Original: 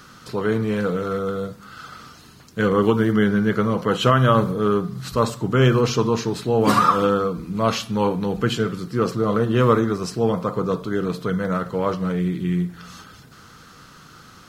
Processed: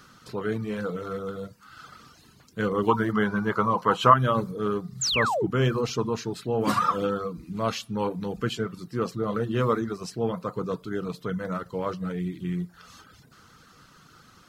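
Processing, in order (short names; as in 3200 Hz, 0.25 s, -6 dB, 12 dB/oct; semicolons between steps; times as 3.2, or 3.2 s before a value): reverb removal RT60 0.58 s; 2.88–4.14 bell 1000 Hz +14.5 dB 0.89 oct; 5.01–5.47 painted sound fall 290–7800 Hz -19 dBFS; gain -6.5 dB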